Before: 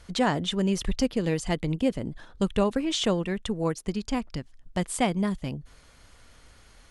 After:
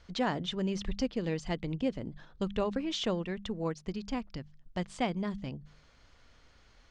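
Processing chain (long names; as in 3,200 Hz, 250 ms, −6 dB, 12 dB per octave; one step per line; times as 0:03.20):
low-pass filter 6,100 Hz 24 dB per octave
hum removal 50.1 Hz, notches 4
level −6.5 dB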